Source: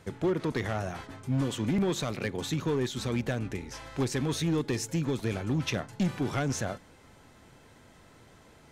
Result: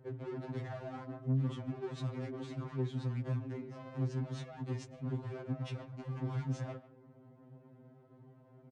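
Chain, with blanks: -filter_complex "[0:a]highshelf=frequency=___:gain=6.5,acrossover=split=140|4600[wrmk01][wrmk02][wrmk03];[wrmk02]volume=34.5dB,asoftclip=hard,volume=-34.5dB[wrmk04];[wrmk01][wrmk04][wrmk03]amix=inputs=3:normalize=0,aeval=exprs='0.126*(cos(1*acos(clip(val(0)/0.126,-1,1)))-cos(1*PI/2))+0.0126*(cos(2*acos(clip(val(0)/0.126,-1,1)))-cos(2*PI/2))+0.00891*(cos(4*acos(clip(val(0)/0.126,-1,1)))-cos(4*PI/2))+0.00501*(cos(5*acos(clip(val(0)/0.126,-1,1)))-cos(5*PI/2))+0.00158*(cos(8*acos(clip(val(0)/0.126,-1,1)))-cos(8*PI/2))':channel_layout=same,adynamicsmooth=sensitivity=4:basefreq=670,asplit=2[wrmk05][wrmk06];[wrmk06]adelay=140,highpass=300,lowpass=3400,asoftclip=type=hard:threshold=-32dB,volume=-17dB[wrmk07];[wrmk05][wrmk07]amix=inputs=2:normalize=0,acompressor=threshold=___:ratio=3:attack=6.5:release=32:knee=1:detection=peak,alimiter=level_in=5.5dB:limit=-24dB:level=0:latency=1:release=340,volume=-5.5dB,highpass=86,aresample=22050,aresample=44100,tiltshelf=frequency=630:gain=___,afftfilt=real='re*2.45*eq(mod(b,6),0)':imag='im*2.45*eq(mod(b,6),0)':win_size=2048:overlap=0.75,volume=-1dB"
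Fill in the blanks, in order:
4200, -37dB, 3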